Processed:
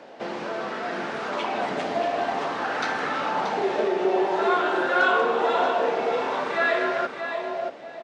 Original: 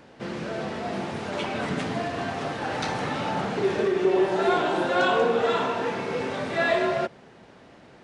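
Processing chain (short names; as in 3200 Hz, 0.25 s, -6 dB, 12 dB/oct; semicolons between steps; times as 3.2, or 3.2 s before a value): three-band isolator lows -19 dB, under 230 Hz, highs -18 dB, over 7800 Hz; in parallel at +2.5 dB: compressor, threshold -36 dBFS, peak gain reduction 17 dB; on the sum: feedback echo 0.63 s, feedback 21%, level -7 dB; LFO bell 0.51 Hz 640–1500 Hz +8 dB; gain -4 dB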